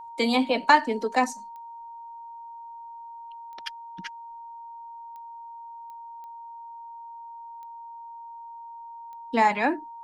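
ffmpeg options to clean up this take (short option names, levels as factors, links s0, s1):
-af "adeclick=t=4,bandreject=f=930:w=30"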